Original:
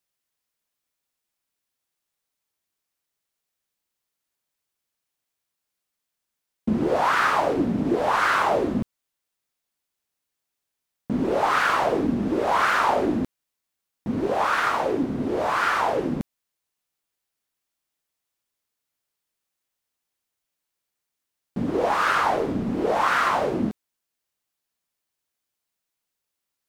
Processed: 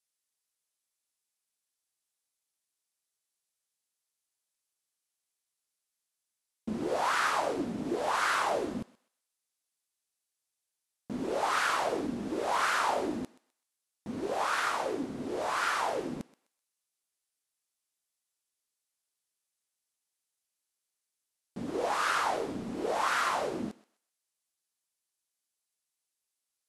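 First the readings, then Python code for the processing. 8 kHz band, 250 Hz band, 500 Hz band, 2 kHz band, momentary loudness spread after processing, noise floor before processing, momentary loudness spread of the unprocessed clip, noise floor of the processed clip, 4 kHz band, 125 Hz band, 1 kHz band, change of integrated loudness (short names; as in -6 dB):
0.0 dB, -11.0 dB, -9.0 dB, -7.5 dB, 14 LU, -83 dBFS, 10 LU, under -85 dBFS, -4.0 dB, -13.5 dB, -8.0 dB, -8.0 dB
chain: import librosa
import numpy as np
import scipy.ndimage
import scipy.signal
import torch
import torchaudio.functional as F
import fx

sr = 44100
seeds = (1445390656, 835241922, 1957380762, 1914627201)

y = scipy.signal.sosfilt(scipy.signal.cheby1(8, 1.0, 12000.0, 'lowpass', fs=sr, output='sos'), x)
y = fx.bass_treble(y, sr, bass_db=-6, treble_db=9)
y = fx.echo_thinned(y, sr, ms=127, feedback_pct=30, hz=780.0, wet_db=-17.0)
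y = F.gain(torch.from_numpy(y), -7.5).numpy()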